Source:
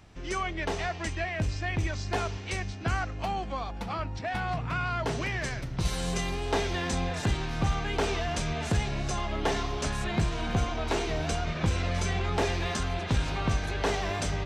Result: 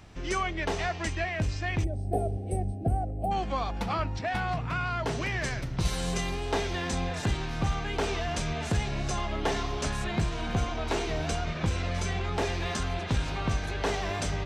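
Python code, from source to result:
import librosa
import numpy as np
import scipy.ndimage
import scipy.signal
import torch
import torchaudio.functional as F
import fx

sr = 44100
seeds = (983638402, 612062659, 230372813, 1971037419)

y = fx.spec_box(x, sr, start_s=1.84, length_s=1.48, low_hz=830.0, high_hz=8100.0, gain_db=-29)
y = fx.rider(y, sr, range_db=10, speed_s=0.5)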